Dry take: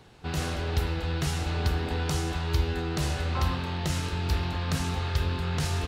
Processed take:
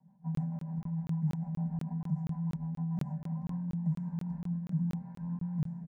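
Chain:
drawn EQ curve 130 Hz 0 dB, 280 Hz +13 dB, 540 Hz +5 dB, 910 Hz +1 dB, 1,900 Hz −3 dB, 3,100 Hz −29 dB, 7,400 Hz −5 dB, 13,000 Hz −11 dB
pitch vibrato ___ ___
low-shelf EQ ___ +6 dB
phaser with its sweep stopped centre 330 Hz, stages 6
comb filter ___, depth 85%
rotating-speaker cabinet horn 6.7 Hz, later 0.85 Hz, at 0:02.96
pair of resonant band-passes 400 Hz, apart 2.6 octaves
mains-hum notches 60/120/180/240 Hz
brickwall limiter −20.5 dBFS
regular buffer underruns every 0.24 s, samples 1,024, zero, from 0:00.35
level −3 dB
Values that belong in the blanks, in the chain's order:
2.6 Hz, 25 cents, 220 Hz, 5.1 ms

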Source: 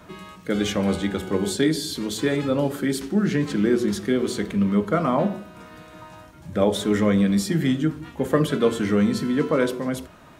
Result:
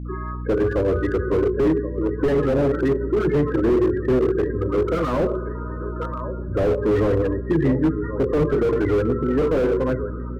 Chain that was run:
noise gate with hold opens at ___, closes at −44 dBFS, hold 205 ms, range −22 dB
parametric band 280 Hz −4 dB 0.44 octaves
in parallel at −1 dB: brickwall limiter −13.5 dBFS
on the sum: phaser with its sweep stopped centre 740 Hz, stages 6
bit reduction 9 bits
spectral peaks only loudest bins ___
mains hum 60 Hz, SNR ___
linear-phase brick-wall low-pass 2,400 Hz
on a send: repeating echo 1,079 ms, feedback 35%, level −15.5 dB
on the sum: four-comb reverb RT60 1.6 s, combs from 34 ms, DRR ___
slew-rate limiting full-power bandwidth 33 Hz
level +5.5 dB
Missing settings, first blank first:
−37 dBFS, 16, 13 dB, 18.5 dB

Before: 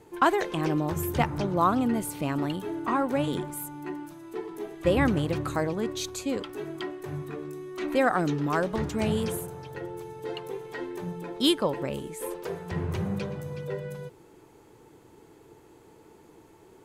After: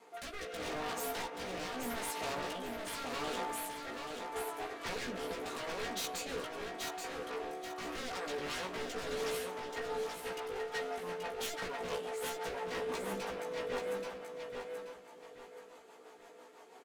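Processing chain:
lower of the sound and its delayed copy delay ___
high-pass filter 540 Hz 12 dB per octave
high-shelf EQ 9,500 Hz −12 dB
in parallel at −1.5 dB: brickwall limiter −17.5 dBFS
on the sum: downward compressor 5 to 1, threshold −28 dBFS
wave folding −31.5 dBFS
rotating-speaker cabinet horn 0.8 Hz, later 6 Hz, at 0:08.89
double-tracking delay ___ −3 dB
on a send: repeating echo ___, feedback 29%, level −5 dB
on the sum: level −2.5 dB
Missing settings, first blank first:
4.3 ms, 16 ms, 830 ms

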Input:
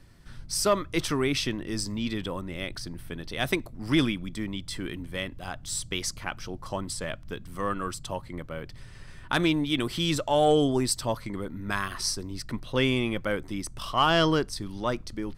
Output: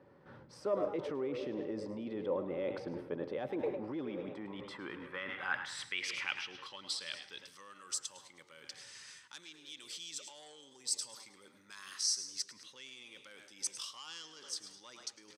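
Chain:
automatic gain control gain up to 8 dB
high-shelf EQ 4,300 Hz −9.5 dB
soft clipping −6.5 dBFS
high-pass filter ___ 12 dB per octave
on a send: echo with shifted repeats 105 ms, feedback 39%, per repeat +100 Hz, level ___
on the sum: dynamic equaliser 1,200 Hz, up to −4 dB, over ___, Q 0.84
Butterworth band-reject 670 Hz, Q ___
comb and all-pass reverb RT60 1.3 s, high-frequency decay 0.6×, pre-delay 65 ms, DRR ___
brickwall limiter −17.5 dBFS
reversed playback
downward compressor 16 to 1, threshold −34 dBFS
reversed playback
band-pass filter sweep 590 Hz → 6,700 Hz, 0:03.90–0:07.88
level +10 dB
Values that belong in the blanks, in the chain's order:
87 Hz, −14 dB, −35 dBFS, 4.8, 15 dB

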